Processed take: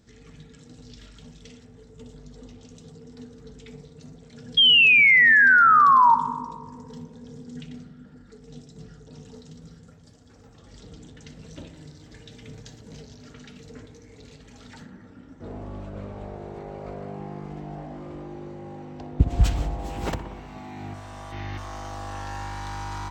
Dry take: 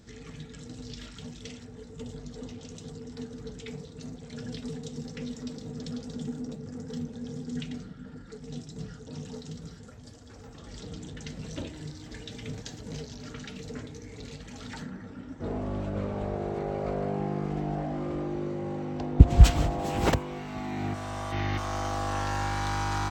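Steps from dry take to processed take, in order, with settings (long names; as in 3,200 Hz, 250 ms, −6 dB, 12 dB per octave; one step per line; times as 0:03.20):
sound drawn into the spectrogram fall, 0:04.57–0:06.15, 900–3,300 Hz −10 dBFS
feedback echo with a low-pass in the loop 61 ms, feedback 80%, low-pass 2,400 Hz, level −11.5 dB
level −5 dB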